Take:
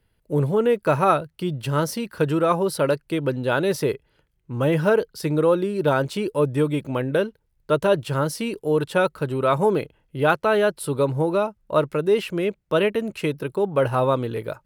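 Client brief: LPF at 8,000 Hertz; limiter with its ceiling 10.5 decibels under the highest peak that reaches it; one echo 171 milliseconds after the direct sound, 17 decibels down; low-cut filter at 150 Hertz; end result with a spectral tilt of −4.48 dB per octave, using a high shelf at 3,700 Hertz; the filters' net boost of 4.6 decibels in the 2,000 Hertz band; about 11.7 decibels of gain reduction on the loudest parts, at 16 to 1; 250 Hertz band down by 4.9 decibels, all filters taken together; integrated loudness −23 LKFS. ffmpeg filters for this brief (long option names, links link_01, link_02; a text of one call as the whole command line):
ffmpeg -i in.wav -af "highpass=150,lowpass=8000,equalizer=frequency=250:width_type=o:gain=-6.5,equalizer=frequency=2000:width_type=o:gain=5.5,highshelf=frequency=3700:gain=6,acompressor=threshold=-24dB:ratio=16,alimiter=limit=-21.5dB:level=0:latency=1,aecho=1:1:171:0.141,volume=9.5dB" out.wav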